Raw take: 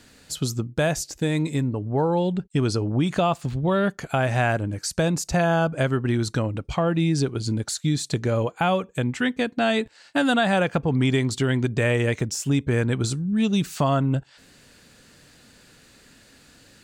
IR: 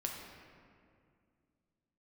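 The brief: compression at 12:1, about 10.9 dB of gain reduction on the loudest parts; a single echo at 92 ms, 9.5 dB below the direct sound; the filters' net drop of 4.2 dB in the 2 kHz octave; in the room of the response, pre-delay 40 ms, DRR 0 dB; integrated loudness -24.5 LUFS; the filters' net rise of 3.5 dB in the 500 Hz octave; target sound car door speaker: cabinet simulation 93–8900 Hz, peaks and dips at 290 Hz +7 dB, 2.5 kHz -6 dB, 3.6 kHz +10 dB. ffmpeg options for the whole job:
-filter_complex "[0:a]equalizer=f=500:t=o:g=4,equalizer=f=2000:t=o:g=-5,acompressor=threshold=0.0447:ratio=12,aecho=1:1:92:0.335,asplit=2[s0][s1];[1:a]atrim=start_sample=2205,adelay=40[s2];[s1][s2]afir=irnorm=-1:irlink=0,volume=0.891[s3];[s0][s3]amix=inputs=2:normalize=0,highpass=93,equalizer=f=290:t=q:w=4:g=7,equalizer=f=2500:t=q:w=4:g=-6,equalizer=f=3600:t=q:w=4:g=10,lowpass=f=8900:w=0.5412,lowpass=f=8900:w=1.3066,volume=1.26"

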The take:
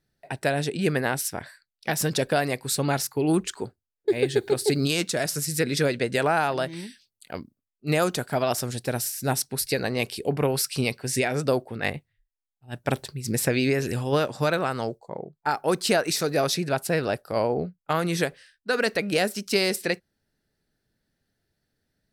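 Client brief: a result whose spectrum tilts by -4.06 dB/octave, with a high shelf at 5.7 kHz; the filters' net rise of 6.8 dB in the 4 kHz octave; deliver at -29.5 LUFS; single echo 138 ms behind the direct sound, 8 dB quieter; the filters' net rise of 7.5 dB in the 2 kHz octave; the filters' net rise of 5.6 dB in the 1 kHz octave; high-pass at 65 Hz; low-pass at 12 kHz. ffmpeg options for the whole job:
-af "highpass=65,lowpass=12000,equalizer=f=1000:t=o:g=6,equalizer=f=2000:t=o:g=6,equalizer=f=4000:t=o:g=4.5,highshelf=f=5700:g=5,aecho=1:1:138:0.398,volume=0.398"

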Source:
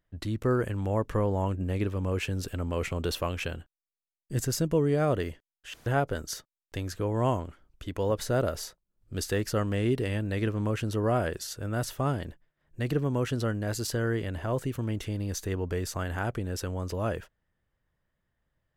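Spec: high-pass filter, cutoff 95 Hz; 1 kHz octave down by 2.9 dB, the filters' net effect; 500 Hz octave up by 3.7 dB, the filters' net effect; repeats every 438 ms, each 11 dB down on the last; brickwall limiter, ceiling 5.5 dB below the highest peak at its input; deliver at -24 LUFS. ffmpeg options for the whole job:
-af "highpass=95,equalizer=f=500:t=o:g=6,equalizer=f=1000:t=o:g=-7,alimiter=limit=0.133:level=0:latency=1,aecho=1:1:438|876|1314:0.282|0.0789|0.0221,volume=2.11"

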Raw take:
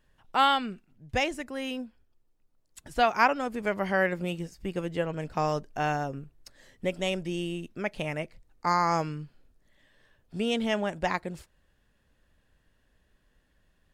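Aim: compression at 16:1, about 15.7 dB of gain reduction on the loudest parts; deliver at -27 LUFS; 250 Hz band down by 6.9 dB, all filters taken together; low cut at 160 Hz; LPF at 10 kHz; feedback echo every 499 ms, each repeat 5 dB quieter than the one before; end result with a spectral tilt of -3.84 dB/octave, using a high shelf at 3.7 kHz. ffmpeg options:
-af "highpass=160,lowpass=10000,equalizer=f=250:t=o:g=-8.5,highshelf=f=3700:g=6,acompressor=threshold=0.0251:ratio=16,aecho=1:1:499|998|1497|1996|2495|2994|3493:0.562|0.315|0.176|0.0988|0.0553|0.031|0.0173,volume=3.76"

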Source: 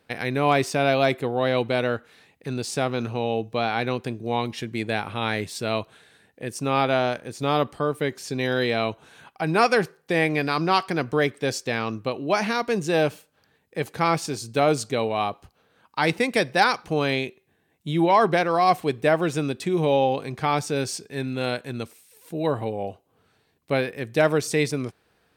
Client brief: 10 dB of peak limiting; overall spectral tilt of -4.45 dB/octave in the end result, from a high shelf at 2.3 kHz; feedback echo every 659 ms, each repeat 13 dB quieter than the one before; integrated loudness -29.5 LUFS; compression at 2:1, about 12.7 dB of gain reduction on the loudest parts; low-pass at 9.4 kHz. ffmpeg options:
-af "lowpass=9400,highshelf=f=2300:g=3,acompressor=threshold=0.0126:ratio=2,alimiter=level_in=1.33:limit=0.0631:level=0:latency=1,volume=0.75,aecho=1:1:659|1318|1977:0.224|0.0493|0.0108,volume=2.66"

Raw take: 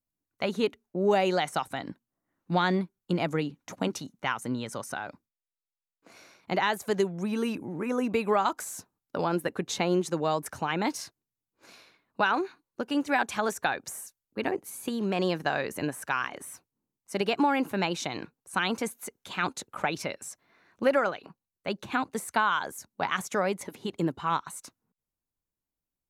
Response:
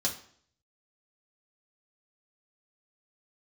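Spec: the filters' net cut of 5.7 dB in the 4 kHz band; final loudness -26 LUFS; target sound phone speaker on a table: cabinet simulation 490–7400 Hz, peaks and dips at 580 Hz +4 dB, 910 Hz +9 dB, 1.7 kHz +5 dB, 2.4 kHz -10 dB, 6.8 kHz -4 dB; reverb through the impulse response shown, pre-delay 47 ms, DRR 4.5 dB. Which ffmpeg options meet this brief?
-filter_complex "[0:a]equalizer=f=4000:t=o:g=-5.5,asplit=2[s0][s1];[1:a]atrim=start_sample=2205,adelay=47[s2];[s1][s2]afir=irnorm=-1:irlink=0,volume=0.316[s3];[s0][s3]amix=inputs=2:normalize=0,highpass=f=490:w=0.5412,highpass=f=490:w=1.3066,equalizer=f=580:t=q:w=4:g=4,equalizer=f=910:t=q:w=4:g=9,equalizer=f=1700:t=q:w=4:g=5,equalizer=f=2400:t=q:w=4:g=-10,equalizer=f=6800:t=q:w=4:g=-4,lowpass=f=7400:w=0.5412,lowpass=f=7400:w=1.3066,volume=1.12"

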